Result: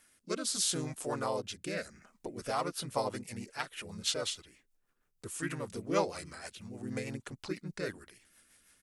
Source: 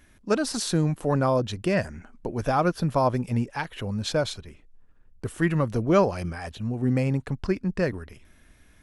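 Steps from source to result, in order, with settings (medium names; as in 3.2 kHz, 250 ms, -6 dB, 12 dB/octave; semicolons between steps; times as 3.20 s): RIAA curve recording; rotary cabinet horn 0.75 Hz, later 6.3 Hz, at 2.03 s; harmony voices -3 st -1 dB; trim -9 dB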